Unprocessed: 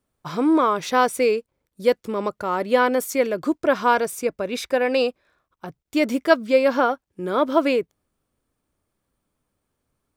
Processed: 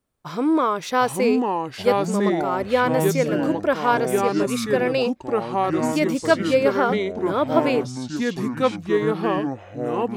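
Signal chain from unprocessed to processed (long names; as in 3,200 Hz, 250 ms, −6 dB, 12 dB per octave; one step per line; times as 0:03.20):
delay with pitch and tempo change per echo 693 ms, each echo −4 semitones, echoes 3
level −1.5 dB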